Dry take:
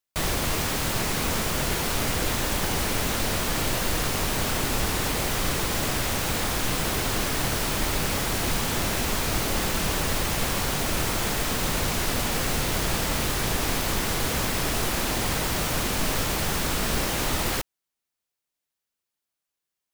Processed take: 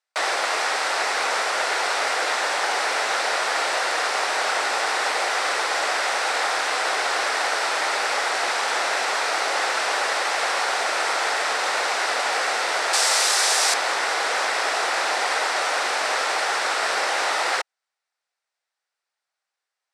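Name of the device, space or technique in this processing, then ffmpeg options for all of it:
phone speaker on a table: -filter_complex "[0:a]highpass=f=490:w=0.5412,highpass=f=490:w=1.3066,equalizer=f=780:t=q:w=4:g=5,equalizer=f=1.4k:t=q:w=4:g=5,equalizer=f=1.9k:t=q:w=4:g=4,equalizer=f=3.1k:t=q:w=4:g=-4,equalizer=f=6.7k:t=q:w=4:g=-6,lowpass=f=7.8k:w=0.5412,lowpass=f=7.8k:w=1.3066,asettb=1/sr,asplit=3[a][b][c];[a]atrim=end=12.934[d];[b]atrim=start=12.93:end=13.74,asetpts=PTS-STARTPTS,afade=t=in:d=0.004:c=qsin,afade=t=out:st=0.806:d=0.004:c=qsin,bass=f=250:g=-11,treble=f=4k:g=14[e];[c]atrim=start=13.736[f];[d][e]acrossfade=d=0.004:c1=hsin:c2=qsin[g];[g][f]acrossfade=d=0.004:c1=qsin:c2=hsin,volume=5dB"

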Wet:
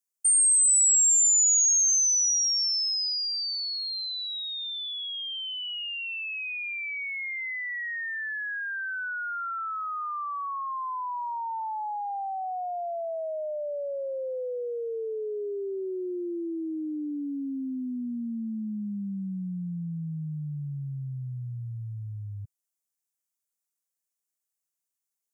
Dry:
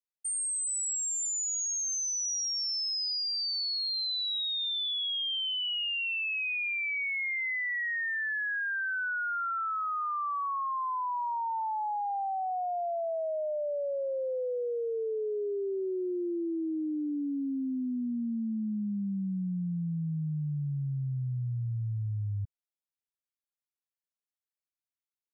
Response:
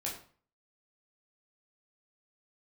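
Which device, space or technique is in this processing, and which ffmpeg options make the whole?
budget condenser microphone: -filter_complex "[0:a]asettb=1/sr,asplit=3[a][b][c];[a]atrim=end=7.544[d];[b]atrim=start=7.54:end=8.18,asetpts=PTS-STARTPTS,afade=t=in:d=0.004:c=qsin,afade=t=out:st=0.636:d=0.004:c=qsin,lowpass=7k[e];[c]atrim=start=8.176[f];[d][e]acrossfade=d=0.004:c1=hsin:c2=qsin[g];[g][f]acrossfade=d=0.004:c1=qsin:c2=hsin,asplit=3[h][i][j];[h]afade=t=out:st=10.24:d=0.02[k];[i]lowpass=2.4k,afade=t=in:st=10.24:d=0.02,afade=t=out:st=10.65:d=0.02[l];[j]afade=t=in:st=10.65:d=0.02[m];[k][l][m]amix=inputs=3:normalize=0,highpass=120,highshelf=f=5.2k:t=q:w=1.5:g=9.5"

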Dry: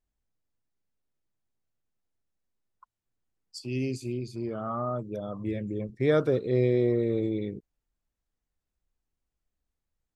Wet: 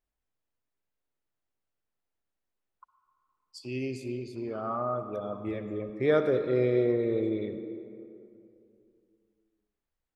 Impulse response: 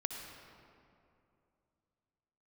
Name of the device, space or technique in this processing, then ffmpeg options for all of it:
filtered reverb send: -filter_complex "[0:a]asplit=2[a][b];[b]highpass=280,lowpass=3.9k[c];[1:a]atrim=start_sample=2205[d];[c][d]afir=irnorm=-1:irlink=0,volume=0.5dB[e];[a][e]amix=inputs=2:normalize=0,volume=-5dB"

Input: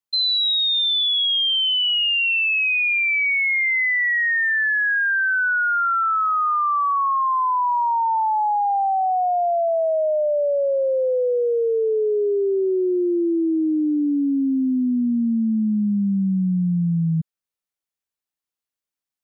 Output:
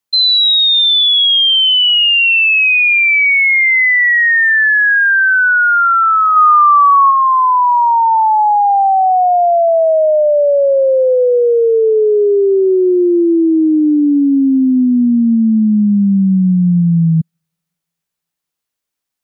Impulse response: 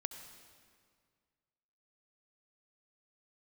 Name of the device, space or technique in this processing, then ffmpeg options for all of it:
keyed gated reverb: -filter_complex "[0:a]asplit=3[a][b][c];[1:a]atrim=start_sample=2205[d];[b][d]afir=irnorm=-1:irlink=0[e];[c]apad=whole_len=848118[f];[e][f]sidechaingate=range=-51dB:threshold=-17dB:ratio=16:detection=peak,volume=2.5dB[g];[a][g]amix=inputs=2:normalize=0,asplit=3[h][i][j];[h]afade=t=out:st=6.35:d=0.02[k];[i]tiltshelf=f=670:g=-6.5,afade=t=in:st=6.35:d=0.02,afade=t=out:st=7.1:d=0.02[l];[j]afade=t=in:st=7.1:d=0.02[m];[k][l][m]amix=inputs=3:normalize=0,volume=9dB"

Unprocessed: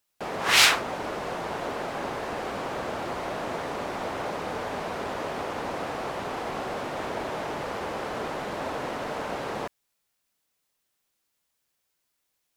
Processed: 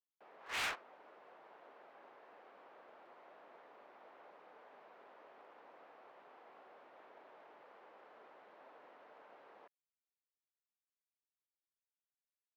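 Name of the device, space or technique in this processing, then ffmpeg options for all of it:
walkie-talkie: -af "highpass=420,lowpass=2.6k,asoftclip=type=hard:threshold=-23dB,agate=range=-44dB:threshold=-22dB:ratio=16:detection=peak,volume=17.5dB"

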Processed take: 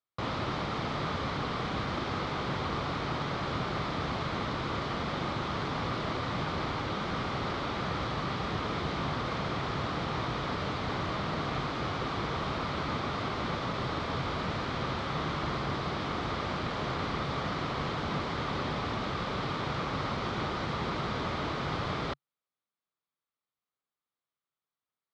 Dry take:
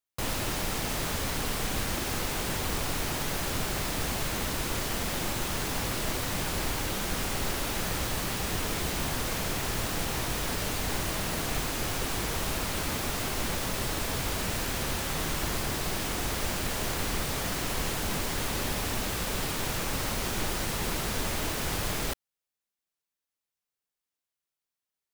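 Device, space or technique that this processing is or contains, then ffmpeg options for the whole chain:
guitar cabinet: -af "highpass=81,equalizer=f=140:t=q:w=4:g=4,equalizer=f=1.2k:t=q:w=4:g=7,equalizer=f=1.7k:t=q:w=4:g=-4,equalizer=f=2.7k:t=q:w=4:g=-7,lowpass=f=3.9k:w=0.5412,lowpass=f=3.9k:w=1.3066"

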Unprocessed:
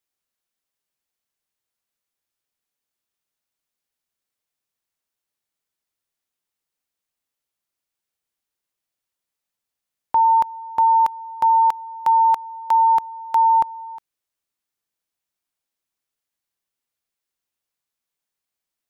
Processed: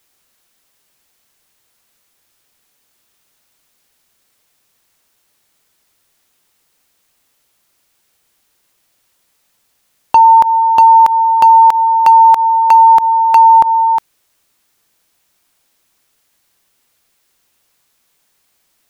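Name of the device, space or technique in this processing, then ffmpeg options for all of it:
loud club master: -af "acompressor=threshold=-18dB:ratio=2.5,asoftclip=type=hard:threshold=-15dB,alimiter=level_in=24dB:limit=-1dB:release=50:level=0:latency=1,volume=-1dB"

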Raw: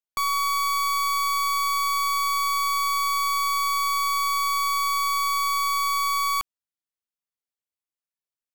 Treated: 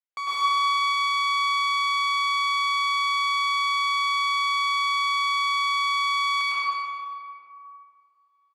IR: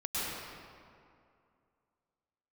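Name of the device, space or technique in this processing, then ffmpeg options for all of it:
station announcement: -filter_complex "[0:a]highpass=430,lowpass=4.3k,equalizer=f=2k:t=o:w=0.31:g=5,aecho=1:1:105|148.7:0.398|0.316[a];[1:a]atrim=start_sample=2205[b];[a][b]afir=irnorm=-1:irlink=0,volume=-2.5dB"

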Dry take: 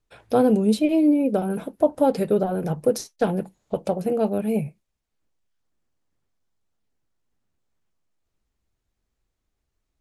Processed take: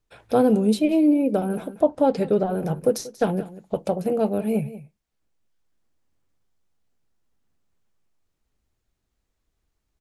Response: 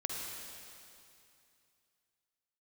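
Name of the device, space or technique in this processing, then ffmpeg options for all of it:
ducked delay: -filter_complex "[0:a]asplit=3[a][b][c];[b]adelay=186,volume=-2dB[d];[c]apad=whole_len=449527[e];[d][e]sidechaincompress=threshold=-35dB:ratio=8:attack=31:release=952[f];[a][f]amix=inputs=2:normalize=0,asettb=1/sr,asplit=3[g][h][i];[g]atrim=end=1.814[j];[h]atrim=start=1.81:end=2.5,asetpts=PTS-STARTPTS,afade=t=in:d=0.004:c=qsin,afade=t=out:st=0.686:d=0.004:c=qsin,lowpass=6.8k[k];[i]atrim=start=2.496[l];[j][k]acrossfade=d=0.004:c1=hsin:c2=qsin[m];[m][l]acrossfade=d=0.004:c1=qsin:c2=hsin"

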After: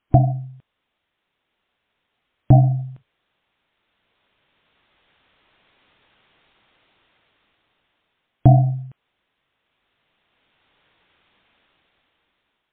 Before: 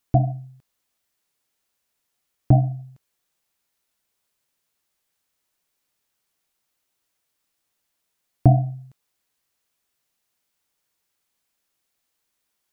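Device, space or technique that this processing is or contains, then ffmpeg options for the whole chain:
low-bitrate web radio: -af "dynaudnorm=f=640:g=5:m=16dB,alimiter=limit=-8dB:level=0:latency=1:release=228,volume=7dB" -ar 8000 -c:a libmp3lame -b:a 24k

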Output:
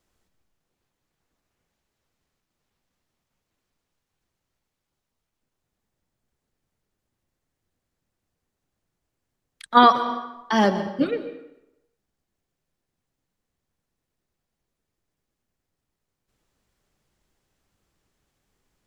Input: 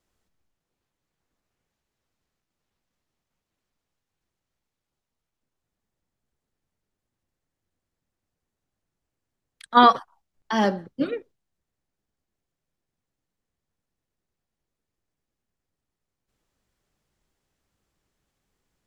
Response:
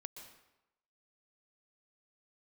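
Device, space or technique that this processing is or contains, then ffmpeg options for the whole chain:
compressed reverb return: -filter_complex "[0:a]asplit=2[a][b];[1:a]atrim=start_sample=2205[c];[b][c]afir=irnorm=-1:irlink=0,acompressor=threshold=-22dB:ratio=6,volume=5dB[d];[a][d]amix=inputs=2:normalize=0,volume=-2.5dB"

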